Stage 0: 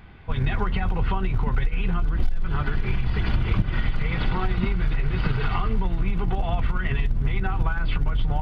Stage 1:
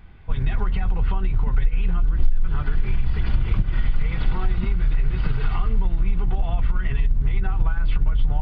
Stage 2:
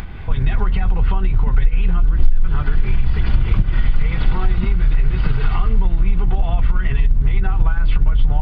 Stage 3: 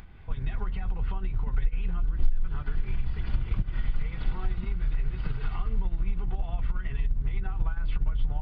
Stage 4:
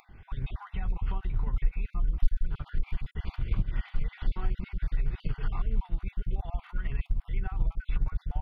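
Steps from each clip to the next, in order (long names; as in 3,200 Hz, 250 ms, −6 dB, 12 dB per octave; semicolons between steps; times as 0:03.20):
low-shelf EQ 68 Hz +11.5 dB; level −5 dB
upward compression, threshold −23 dBFS; level +5 dB
expander for the loud parts 1.5 to 1, over −22 dBFS; level −9 dB
time-frequency cells dropped at random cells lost 30%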